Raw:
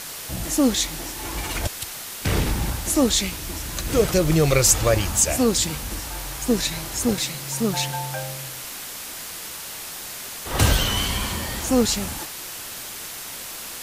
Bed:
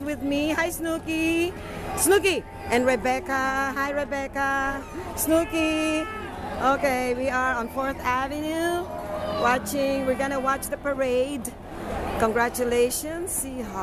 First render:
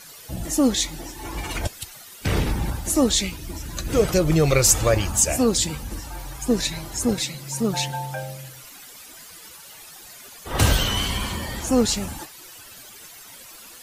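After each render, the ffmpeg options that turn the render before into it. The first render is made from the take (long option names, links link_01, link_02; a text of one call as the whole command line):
ffmpeg -i in.wav -af "afftdn=noise_reduction=13:noise_floor=-35" out.wav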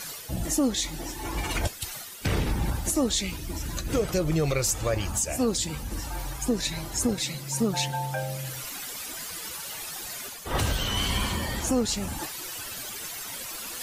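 ffmpeg -i in.wav -af "alimiter=limit=-15.5dB:level=0:latency=1:release=498,areverse,acompressor=mode=upward:threshold=-28dB:ratio=2.5,areverse" out.wav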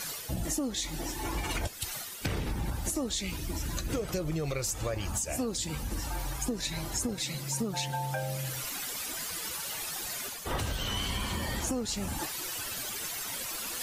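ffmpeg -i in.wav -af "acompressor=threshold=-29dB:ratio=6" out.wav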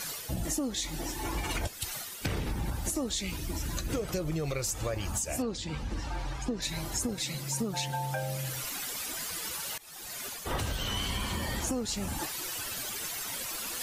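ffmpeg -i in.wav -filter_complex "[0:a]asettb=1/sr,asplit=3[link_01][link_02][link_03];[link_01]atrim=end=5.424[link_04];[link_02]atrim=start=5.42:end=6.62,asetpts=PTS-STARTPTS,afade=type=in:duration=0.004:curve=qsin,afade=type=out:start_time=1.196:duration=0.004:curve=qsin,lowpass=4500[link_05];[link_03]atrim=start=6.616[link_06];[link_04][link_05]acrossfade=duration=0.004:curve1=hsin:curve2=qsin[link_07];[link_07][link_06]acrossfade=duration=0.004:curve1=qsin:curve2=hsin,asplit=2[link_08][link_09];[link_08]atrim=end=9.78,asetpts=PTS-STARTPTS,afade=type=out:start_time=9.776:duration=0.004:curve=hsin:silence=0.0707946[link_10];[link_09]atrim=start=9.78,asetpts=PTS-STARTPTS,afade=type=in:duration=0.55:silence=0.0707946[link_11];[link_10][link_11]concat=n=2:v=0:a=1" out.wav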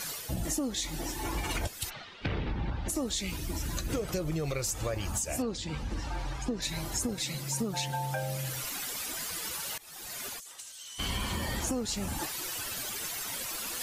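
ffmpeg -i in.wav -filter_complex "[0:a]asplit=3[link_01][link_02][link_03];[link_01]afade=type=out:start_time=1.89:duration=0.02[link_04];[link_02]lowpass=frequency=3800:width=0.5412,lowpass=frequency=3800:width=1.3066,afade=type=in:start_time=1.89:duration=0.02,afade=type=out:start_time=2.88:duration=0.02[link_05];[link_03]afade=type=in:start_time=2.88:duration=0.02[link_06];[link_04][link_05][link_06]amix=inputs=3:normalize=0,asplit=3[link_07][link_08][link_09];[link_07]afade=type=out:start_time=10.39:duration=0.02[link_10];[link_08]bandpass=frequency=7700:width_type=q:width=1.7,afade=type=in:start_time=10.39:duration=0.02,afade=type=out:start_time=10.98:duration=0.02[link_11];[link_09]afade=type=in:start_time=10.98:duration=0.02[link_12];[link_10][link_11][link_12]amix=inputs=3:normalize=0" out.wav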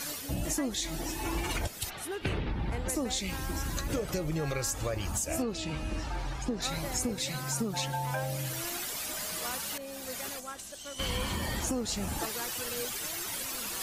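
ffmpeg -i in.wav -i bed.wav -filter_complex "[1:a]volume=-19dB[link_01];[0:a][link_01]amix=inputs=2:normalize=0" out.wav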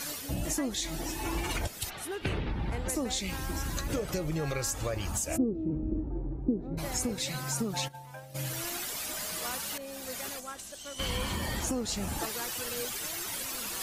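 ffmpeg -i in.wav -filter_complex "[0:a]asplit=3[link_01][link_02][link_03];[link_01]afade=type=out:start_time=5.36:duration=0.02[link_04];[link_02]lowpass=frequency=340:width_type=q:width=2.7,afade=type=in:start_time=5.36:duration=0.02,afade=type=out:start_time=6.77:duration=0.02[link_05];[link_03]afade=type=in:start_time=6.77:duration=0.02[link_06];[link_04][link_05][link_06]amix=inputs=3:normalize=0,asplit=3[link_07][link_08][link_09];[link_07]afade=type=out:start_time=7.87:duration=0.02[link_10];[link_08]agate=range=-33dB:threshold=-24dB:ratio=3:release=100:detection=peak,afade=type=in:start_time=7.87:duration=0.02,afade=type=out:start_time=8.34:duration=0.02[link_11];[link_09]afade=type=in:start_time=8.34:duration=0.02[link_12];[link_10][link_11][link_12]amix=inputs=3:normalize=0" out.wav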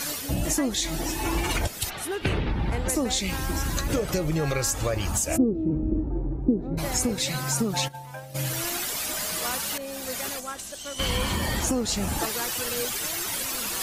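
ffmpeg -i in.wav -af "volume=6.5dB" out.wav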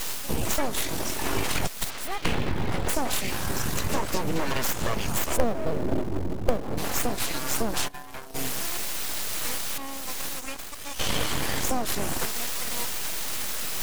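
ffmpeg -i in.wav -filter_complex "[0:a]asplit=2[link_01][link_02];[link_02]acrusher=bits=3:dc=4:mix=0:aa=0.000001,volume=-7.5dB[link_03];[link_01][link_03]amix=inputs=2:normalize=0,aeval=exprs='abs(val(0))':channel_layout=same" out.wav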